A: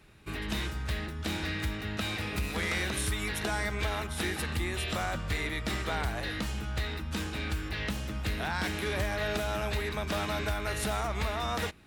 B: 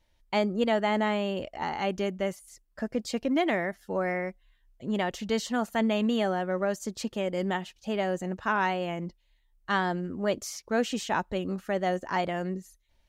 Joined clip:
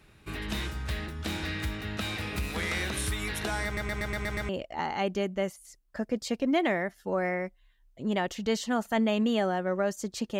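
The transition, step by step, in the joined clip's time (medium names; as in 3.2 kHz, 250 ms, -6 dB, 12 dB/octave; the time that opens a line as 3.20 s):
A
3.65 s: stutter in place 0.12 s, 7 plays
4.49 s: go over to B from 1.32 s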